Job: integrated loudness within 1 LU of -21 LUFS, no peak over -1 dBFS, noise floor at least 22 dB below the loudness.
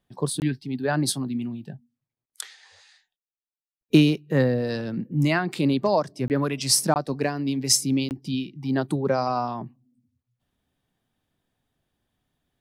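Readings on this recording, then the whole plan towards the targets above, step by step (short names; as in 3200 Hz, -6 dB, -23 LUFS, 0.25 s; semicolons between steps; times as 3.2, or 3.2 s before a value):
dropouts 4; longest dropout 19 ms; loudness -24.0 LUFS; peak -5.5 dBFS; loudness target -21.0 LUFS
-> interpolate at 0.4/6.28/6.94/8.09, 19 ms; gain +3 dB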